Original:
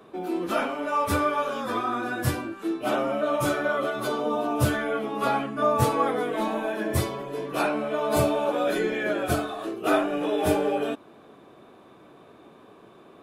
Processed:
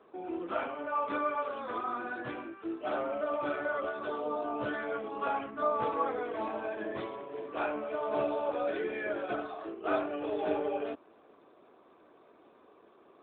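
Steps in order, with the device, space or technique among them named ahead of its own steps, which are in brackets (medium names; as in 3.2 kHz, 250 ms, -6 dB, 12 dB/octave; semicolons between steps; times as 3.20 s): 8.97–9.90 s: dynamic bell 6.6 kHz, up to -6 dB, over -56 dBFS, Q 2; telephone (band-pass 310–3400 Hz; trim -6.5 dB; AMR-NB 12.2 kbps 8 kHz)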